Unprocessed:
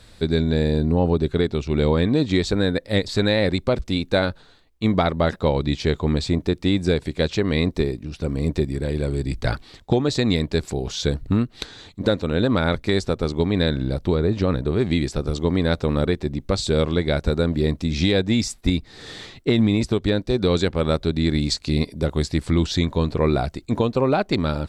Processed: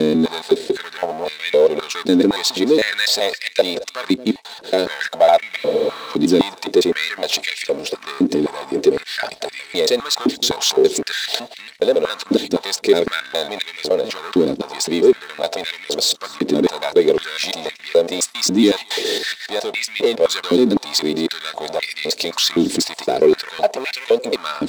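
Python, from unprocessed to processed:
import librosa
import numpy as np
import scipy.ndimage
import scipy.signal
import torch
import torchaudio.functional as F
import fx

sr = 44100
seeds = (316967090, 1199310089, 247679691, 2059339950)

p1 = fx.block_reorder(x, sr, ms=139.0, group=5)
p2 = fx.peak_eq(p1, sr, hz=1200.0, db=-11.5, octaves=0.81)
p3 = fx.over_compress(p2, sr, threshold_db=-31.0, ratio=-1.0)
p4 = p2 + F.gain(torch.from_numpy(p3), -1.0).numpy()
p5 = scipy.signal.sosfilt(scipy.signal.butter(2, 7600.0, 'lowpass', fs=sr, output='sos'), p4)
p6 = fx.power_curve(p5, sr, exponent=0.7)
p7 = fx.high_shelf(p6, sr, hz=3600.0, db=6.0)
p8 = p7 + 0.31 * np.pad(p7, (int(4.5 * sr / 1000.0), 0))[:len(p7)]
p9 = p8 + fx.echo_single(p8, sr, ms=224, db=-20.5, dry=0)
p10 = fx.spec_freeze(p9, sr, seeds[0], at_s=5.59, hold_s=0.52)
p11 = fx.filter_held_highpass(p10, sr, hz=3.9, low_hz=290.0, high_hz=2100.0)
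y = F.gain(torch.from_numpy(p11), -3.5).numpy()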